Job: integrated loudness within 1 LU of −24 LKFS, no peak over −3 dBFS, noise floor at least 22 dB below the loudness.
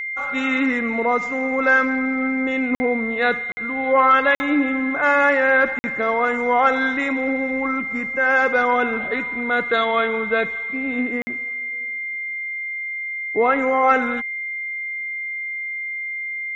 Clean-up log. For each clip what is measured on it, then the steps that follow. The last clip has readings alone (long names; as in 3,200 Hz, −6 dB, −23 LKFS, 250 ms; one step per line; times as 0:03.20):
number of dropouts 5; longest dropout 50 ms; interfering tone 2,100 Hz; level of the tone −25 dBFS; integrated loudness −20.0 LKFS; sample peak −4.5 dBFS; target loudness −24.0 LKFS
→ repair the gap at 0:02.75/0:03.52/0:04.35/0:05.79/0:11.22, 50 ms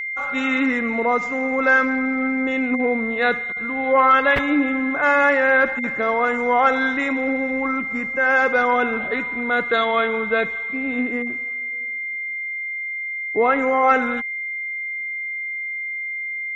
number of dropouts 0; interfering tone 2,100 Hz; level of the tone −25 dBFS
→ notch filter 2,100 Hz, Q 30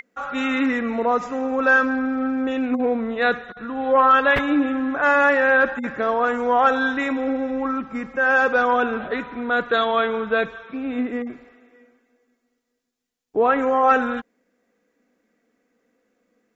interfering tone none found; integrated loudness −20.5 LKFS; sample peak −5.5 dBFS; target loudness −24.0 LKFS
→ level −3.5 dB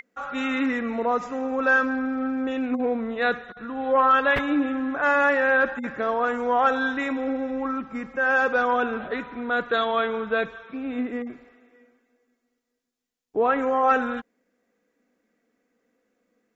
integrated loudness −24.0 LKFS; sample peak −9.0 dBFS; background noise floor −77 dBFS